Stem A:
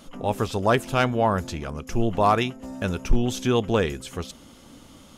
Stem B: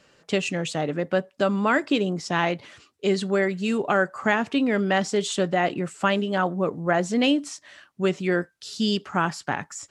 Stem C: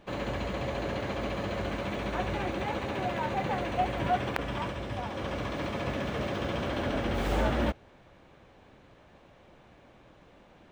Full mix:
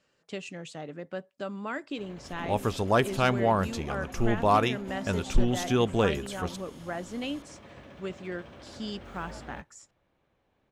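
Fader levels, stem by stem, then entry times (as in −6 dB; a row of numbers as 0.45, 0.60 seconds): −3.0, −13.5, −16.5 decibels; 2.25, 0.00, 1.90 seconds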